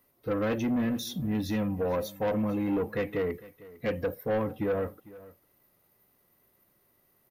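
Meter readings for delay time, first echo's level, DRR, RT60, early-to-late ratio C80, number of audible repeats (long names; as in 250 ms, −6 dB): 452 ms, −19.5 dB, no reverb audible, no reverb audible, no reverb audible, 1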